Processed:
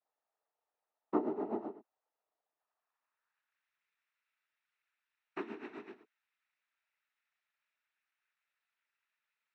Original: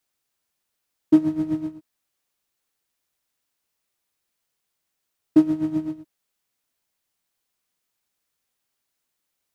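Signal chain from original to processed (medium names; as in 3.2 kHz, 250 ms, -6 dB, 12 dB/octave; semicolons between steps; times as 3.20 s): overdrive pedal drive 16 dB, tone 1.8 kHz, clips at -5 dBFS; band-pass sweep 700 Hz -> 1.9 kHz, 2.44–3.66 s; noise-vocoded speech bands 12; trim -3.5 dB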